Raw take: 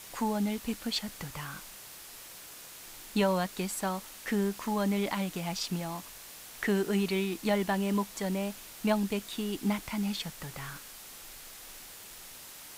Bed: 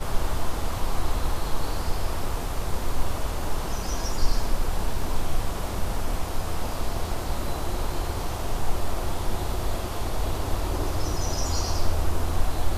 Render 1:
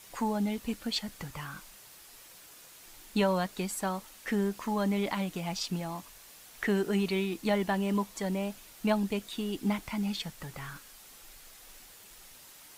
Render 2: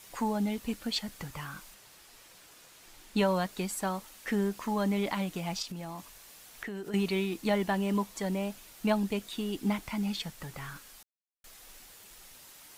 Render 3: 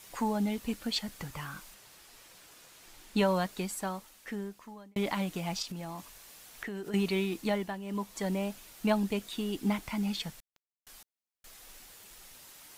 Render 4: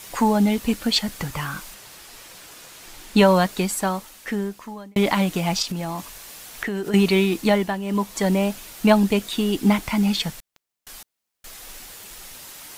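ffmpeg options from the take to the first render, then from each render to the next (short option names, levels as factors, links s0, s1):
-af "afftdn=nr=6:nf=-48"
-filter_complex "[0:a]asettb=1/sr,asplit=3[s0][s1][s2];[s0]atrim=end=1.744[s3];[s1]atrim=start=1.74:end=3.18,asetpts=PTS-STARTPTS,afade=t=in:d=0.004:c=qsin,afade=t=out:st=1.436:d=0.004:c=qsin,highshelf=f=9100:g=-8[s4];[s2]atrim=start=3.176[s5];[s3][s4]acrossfade=d=0.004:c1=hsin:c2=qsin[s6];[s6][s5]acrossfade=d=0.004:c1=qsin:c2=hsin,asettb=1/sr,asplit=3[s7][s8][s9];[s7]atrim=end=5.624[s10];[s8]atrim=start=5.62:end=6.94,asetpts=PTS-STARTPTS,afade=t=in:d=0.004:c=qsin,afade=t=out:st=1.316:d=0.004:c=qsin,acompressor=threshold=0.0158:ratio=6:attack=3.2:release=140:knee=1:detection=peak[s11];[s9]atrim=start=6.936[s12];[s10][s11]acrossfade=d=0.004:c1=hsin:c2=qsin[s13];[s13][s12]acrossfade=d=0.004:c1=qsin:c2=hsin,asplit=3[s14][s15][s16];[s14]atrim=end=11.03,asetpts=PTS-STARTPTS,afade=t=out:st=11.026:d=0.004:c=hsin[s17];[s15]atrim=start=11.03:end=11.44,asetpts=PTS-STARTPTS,volume=0[s18];[s16]atrim=start=11.44,asetpts=PTS-STARTPTS,afade=t=in:d=0.004:c=hsin[s19];[s17][s18][s19]concat=n=3:v=0:a=1"
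-filter_complex "[0:a]asettb=1/sr,asplit=3[s0][s1][s2];[s0]atrim=end=10.404[s3];[s1]atrim=start=10.4:end=10.87,asetpts=PTS-STARTPTS,afade=t=in:d=0.004:c=qsin,afade=t=out:st=0.466:d=0.004:c=qsin,acrusher=bits=3:mix=0:aa=0.5[s4];[s2]atrim=start=10.866[s5];[s3][s4]acrossfade=d=0.004:c1=hsin:c2=qsin[s6];[s6][s5]acrossfade=d=0.004:c1=qsin:c2=hsin,asplit=4[s7][s8][s9][s10];[s7]atrim=end=4.96,asetpts=PTS-STARTPTS,afade=t=out:st=3.42:d=1.54[s11];[s8]atrim=start=4.96:end=7.79,asetpts=PTS-STARTPTS,afade=t=in:d=0.004:c=hsin,afade=t=out:st=2.43:d=0.4:silence=0.266073[s12];[s9]atrim=start=7.79:end=7.82,asetpts=PTS-STARTPTS,volume=0.266[s13];[s10]atrim=start=7.82,asetpts=PTS-STARTPTS,afade=t=in:d=0.4:silence=0.266073[s14];[s11][s12][s13][s14]concat=n=4:v=0:a=1"
-af "volume=3.98"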